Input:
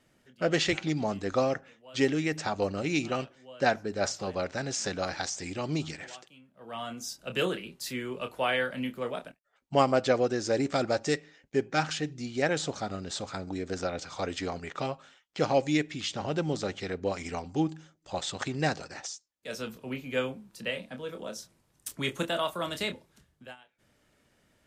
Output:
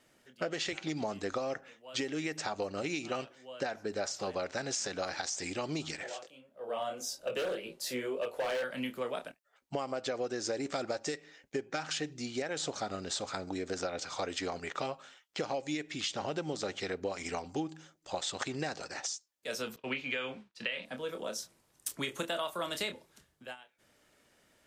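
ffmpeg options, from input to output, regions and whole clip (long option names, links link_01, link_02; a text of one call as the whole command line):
ffmpeg -i in.wav -filter_complex "[0:a]asettb=1/sr,asplit=3[link_01][link_02][link_03];[link_01]atrim=end=6.034[link_04];[link_02]atrim=start=6.03:end=8.64,asetpts=PTS-STARTPTS,afade=type=in:duration=0.004:curve=qsin,afade=type=out:start_time=2.606:duration=0.004:curve=qsin,equalizer=frequency=540:width=1.8:gain=13,flanger=delay=18:depth=6.2:speed=1.8,asoftclip=type=hard:threshold=-25dB[link_05];[link_03]atrim=start=8.636[link_06];[link_04][link_05]acrossfade=duration=0.004:curve1=hsin:curve2=qsin[link_07];[link_07][link_06]acrossfade=duration=0.004:curve1=qsin:curve2=hsin,asettb=1/sr,asplit=3[link_08][link_09][link_10];[link_08]atrim=end=19.764[link_11];[link_09]atrim=start=19.76:end=20.85,asetpts=PTS-STARTPTS,afade=type=in:duration=0.004:curve=qsin,afade=type=out:start_time=1.086:duration=0.004:curve=qsin,lowpass=5700,agate=range=-33dB:threshold=-45dB:ratio=3:release=100:detection=peak,equalizer=frequency=2500:width=0.53:gain=10[link_12];[link_10]atrim=start=20.846[link_13];[link_11][link_12]acrossfade=duration=0.004:curve1=hsin:curve2=qsin[link_14];[link_14][link_13]acrossfade=duration=0.004:curve1=qsin:curve2=hsin,bass=frequency=250:gain=-8,treble=frequency=4000:gain=2,alimiter=limit=-18.5dB:level=0:latency=1:release=192,acompressor=threshold=-33dB:ratio=6,volume=1.5dB" out.wav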